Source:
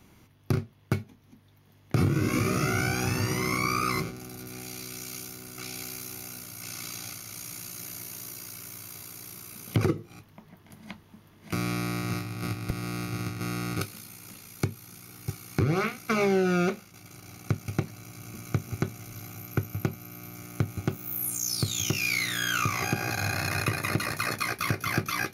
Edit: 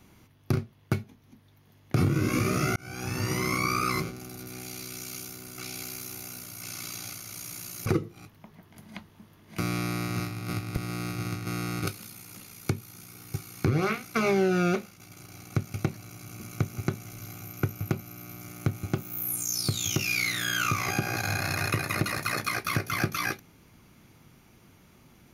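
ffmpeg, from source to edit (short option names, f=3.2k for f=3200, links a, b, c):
-filter_complex "[0:a]asplit=3[a][b][c];[a]atrim=end=2.76,asetpts=PTS-STARTPTS,afade=t=out:st=2.756:d=0.004:c=hsin[d];[b]atrim=start=2.76:end=7.862,asetpts=PTS-STARTPTS,afade=t=in:d=0.57[e];[c]atrim=start=9.798[f];[d][e]concat=n=2:v=0:a=1[g];[g][f]acrossfade=d=0.004:c1=hsin:c2=hsin"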